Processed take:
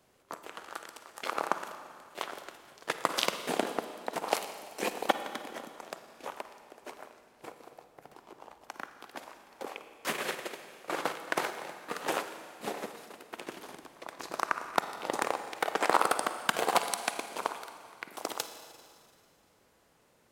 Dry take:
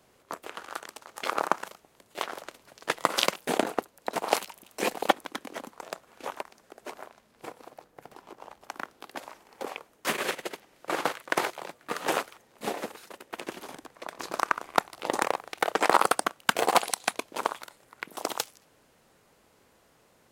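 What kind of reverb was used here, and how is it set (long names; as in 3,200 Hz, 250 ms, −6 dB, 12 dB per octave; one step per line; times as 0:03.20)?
four-comb reverb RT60 2.2 s, DRR 8.5 dB
level −4.5 dB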